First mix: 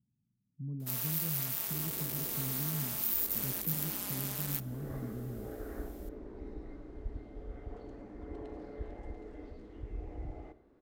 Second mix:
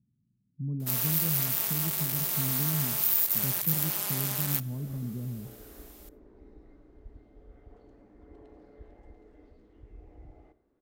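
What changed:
speech +6.5 dB; first sound +7.0 dB; second sound -8.5 dB

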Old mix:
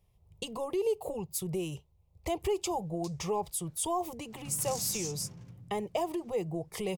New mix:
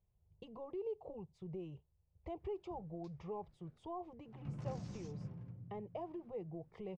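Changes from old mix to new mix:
speech -10.0 dB; master: add tape spacing loss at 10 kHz 45 dB

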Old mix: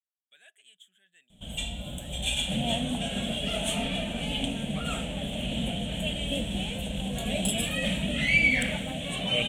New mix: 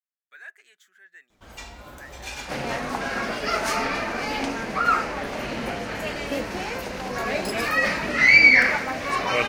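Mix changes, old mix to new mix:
first sound -8.0 dB; master: remove EQ curve 110 Hz 0 dB, 180 Hz +8 dB, 380 Hz -13 dB, 630 Hz -4 dB, 1100 Hz -23 dB, 2100 Hz -14 dB, 3300 Hz +11 dB, 4900 Hz -26 dB, 8200 Hz +7 dB, 16000 Hz -12 dB

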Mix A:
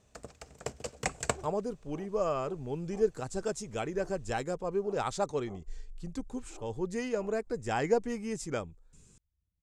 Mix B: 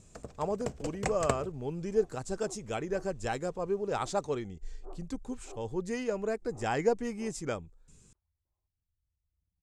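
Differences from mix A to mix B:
speech: entry -1.05 s; first sound: add tilt shelf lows +4 dB, about 830 Hz

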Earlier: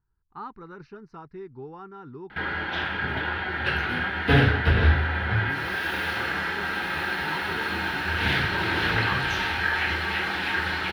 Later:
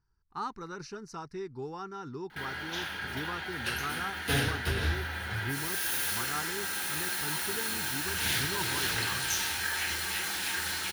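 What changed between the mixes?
background -12.0 dB; master: remove air absorption 400 m

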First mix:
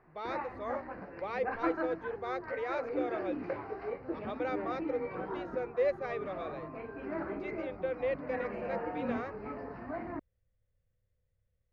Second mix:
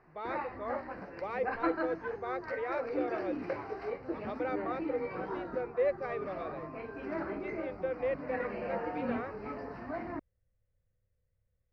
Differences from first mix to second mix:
speech: add tone controls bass 0 dB, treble -14 dB; background: remove air absorption 210 m

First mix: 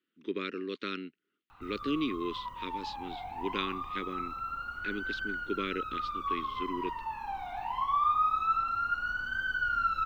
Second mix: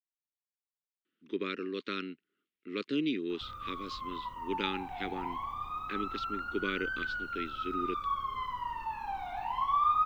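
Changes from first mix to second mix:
speech: entry +1.05 s; background: entry +1.80 s

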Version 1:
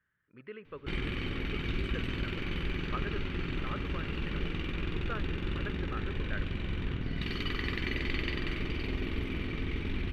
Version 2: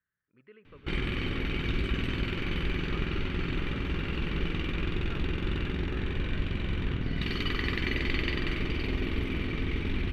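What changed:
speech -9.5 dB; background +3.5 dB

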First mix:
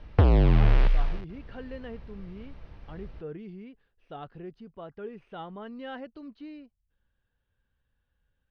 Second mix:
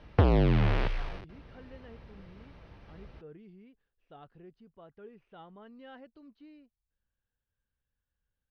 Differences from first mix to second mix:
speech -10.5 dB; background: add HPF 100 Hz 6 dB/oct

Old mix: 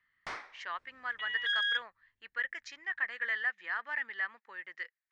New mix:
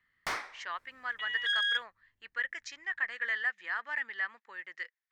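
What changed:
first sound +5.5 dB; master: remove air absorption 88 m

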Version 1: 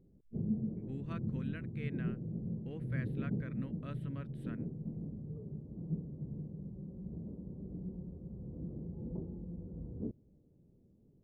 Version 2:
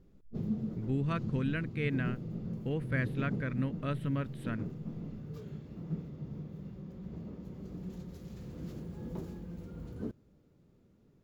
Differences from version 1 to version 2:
speech +11.5 dB; background: remove Gaussian blur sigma 13 samples

